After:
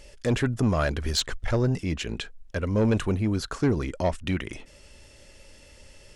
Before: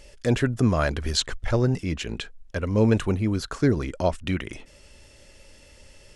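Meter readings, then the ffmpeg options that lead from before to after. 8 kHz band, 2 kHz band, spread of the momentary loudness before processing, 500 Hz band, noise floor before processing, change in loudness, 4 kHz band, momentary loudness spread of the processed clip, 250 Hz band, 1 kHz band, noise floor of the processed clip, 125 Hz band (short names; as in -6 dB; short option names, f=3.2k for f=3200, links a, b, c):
-1.0 dB, -1.5 dB, 11 LU, -2.0 dB, -52 dBFS, -2.0 dB, -1.0 dB, 9 LU, -2.0 dB, -1.5 dB, -52 dBFS, -2.0 dB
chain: -af "asoftclip=type=tanh:threshold=-15.5dB"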